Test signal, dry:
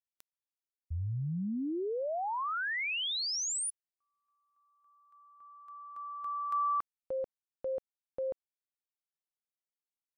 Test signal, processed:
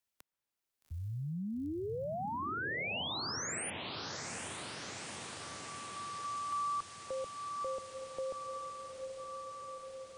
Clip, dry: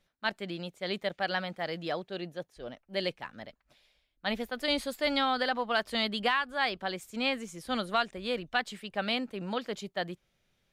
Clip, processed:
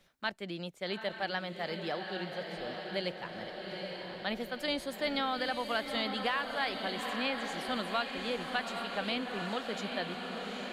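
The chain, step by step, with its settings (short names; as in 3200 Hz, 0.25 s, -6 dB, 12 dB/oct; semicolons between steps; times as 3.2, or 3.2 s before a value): diffused feedback echo 0.838 s, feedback 67%, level -7 dB; three-band squash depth 40%; gain -4 dB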